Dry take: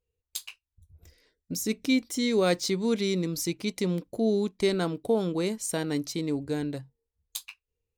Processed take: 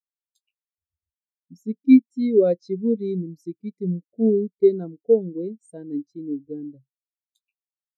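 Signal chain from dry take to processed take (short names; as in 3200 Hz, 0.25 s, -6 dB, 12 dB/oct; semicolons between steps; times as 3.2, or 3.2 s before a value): spectral expander 2.5:1; gain +8 dB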